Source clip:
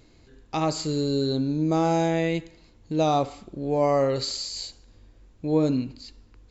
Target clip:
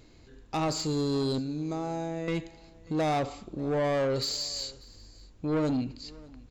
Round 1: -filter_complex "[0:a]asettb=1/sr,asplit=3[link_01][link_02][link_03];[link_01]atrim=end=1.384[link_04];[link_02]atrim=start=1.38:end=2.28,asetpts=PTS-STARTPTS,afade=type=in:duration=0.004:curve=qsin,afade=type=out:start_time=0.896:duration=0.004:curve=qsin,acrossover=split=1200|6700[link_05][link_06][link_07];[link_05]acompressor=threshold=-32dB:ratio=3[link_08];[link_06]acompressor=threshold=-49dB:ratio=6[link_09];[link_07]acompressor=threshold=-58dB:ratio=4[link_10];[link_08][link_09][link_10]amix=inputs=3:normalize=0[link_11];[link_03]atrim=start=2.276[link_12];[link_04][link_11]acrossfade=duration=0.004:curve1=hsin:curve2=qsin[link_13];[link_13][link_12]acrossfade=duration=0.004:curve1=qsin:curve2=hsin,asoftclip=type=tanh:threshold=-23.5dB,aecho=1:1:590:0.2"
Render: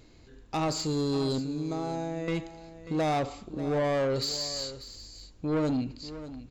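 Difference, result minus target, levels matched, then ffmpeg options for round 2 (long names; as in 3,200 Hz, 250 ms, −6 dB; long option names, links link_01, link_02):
echo-to-direct +9 dB
-filter_complex "[0:a]asettb=1/sr,asplit=3[link_01][link_02][link_03];[link_01]atrim=end=1.384[link_04];[link_02]atrim=start=1.38:end=2.28,asetpts=PTS-STARTPTS,afade=type=in:duration=0.004:curve=qsin,afade=type=out:start_time=0.896:duration=0.004:curve=qsin,acrossover=split=1200|6700[link_05][link_06][link_07];[link_05]acompressor=threshold=-32dB:ratio=3[link_08];[link_06]acompressor=threshold=-49dB:ratio=6[link_09];[link_07]acompressor=threshold=-58dB:ratio=4[link_10];[link_08][link_09][link_10]amix=inputs=3:normalize=0[link_11];[link_03]atrim=start=2.276[link_12];[link_04][link_11]acrossfade=duration=0.004:curve1=hsin:curve2=qsin[link_13];[link_13][link_12]acrossfade=duration=0.004:curve1=qsin:curve2=hsin,asoftclip=type=tanh:threshold=-23.5dB,aecho=1:1:590:0.0708"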